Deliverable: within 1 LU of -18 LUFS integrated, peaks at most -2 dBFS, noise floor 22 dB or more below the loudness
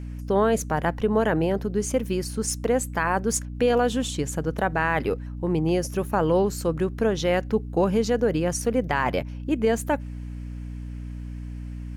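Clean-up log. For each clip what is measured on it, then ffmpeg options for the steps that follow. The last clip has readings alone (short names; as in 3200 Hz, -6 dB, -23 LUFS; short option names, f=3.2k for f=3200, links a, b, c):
hum 60 Hz; harmonics up to 300 Hz; hum level -32 dBFS; loudness -24.5 LUFS; peak -10.5 dBFS; loudness target -18.0 LUFS
-> -af "bandreject=f=60:t=h:w=4,bandreject=f=120:t=h:w=4,bandreject=f=180:t=h:w=4,bandreject=f=240:t=h:w=4,bandreject=f=300:t=h:w=4"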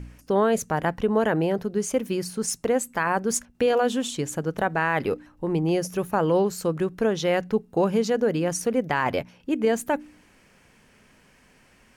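hum none; loudness -25.0 LUFS; peak -11.0 dBFS; loudness target -18.0 LUFS
-> -af "volume=7dB"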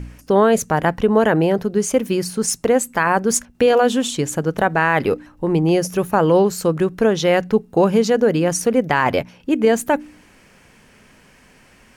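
loudness -18.0 LUFS; peak -4.0 dBFS; noise floor -51 dBFS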